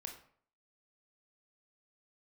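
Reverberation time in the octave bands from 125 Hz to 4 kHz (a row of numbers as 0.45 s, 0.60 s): 0.60 s, 0.55 s, 0.55 s, 0.55 s, 0.50 s, 0.35 s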